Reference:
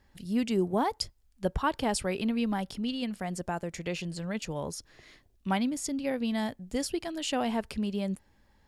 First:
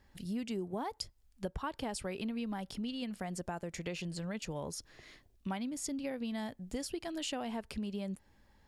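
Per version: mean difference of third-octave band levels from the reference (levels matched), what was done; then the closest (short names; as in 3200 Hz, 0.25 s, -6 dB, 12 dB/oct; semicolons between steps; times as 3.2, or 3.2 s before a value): 2.5 dB: compressor 4:1, threshold -35 dBFS, peak gain reduction 11 dB; gain -1 dB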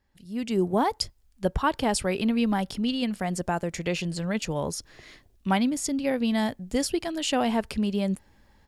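1.0 dB: AGC gain up to 14.5 dB; gain -8.5 dB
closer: second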